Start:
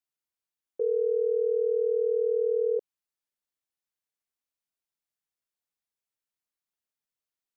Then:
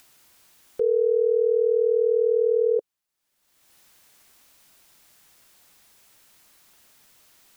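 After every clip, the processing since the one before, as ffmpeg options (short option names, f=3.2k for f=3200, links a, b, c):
-af "acompressor=mode=upward:threshold=-42dB:ratio=2.5,equalizer=f=460:w=6.7:g=-2.5,volume=7dB"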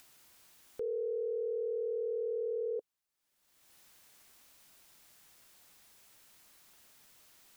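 -af "alimiter=level_in=2dB:limit=-24dB:level=0:latency=1:release=15,volume=-2dB,volume=-4.5dB"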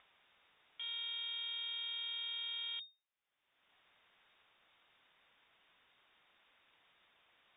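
-af "aeval=exprs='(tanh(158*val(0)+0.65)-tanh(0.65))/158':c=same,lowpass=f=3.1k:t=q:w=0.5098,lowpass=f=3.1k:t=q:w=0.6013,lowpass=f=3.1k:t=q:w=0.9,lowpass=f=3.1k:t=q:w=2.563,afreqshift=-3700,volume=2dB"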